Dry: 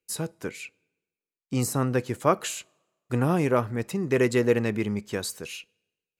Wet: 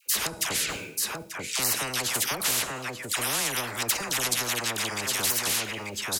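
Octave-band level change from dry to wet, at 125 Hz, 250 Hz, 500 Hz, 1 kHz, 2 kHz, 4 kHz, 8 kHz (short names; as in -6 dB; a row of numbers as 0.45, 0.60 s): -12.0, -11.5, -10.5, -1.0, +5.5, +12.5, +11.5 dB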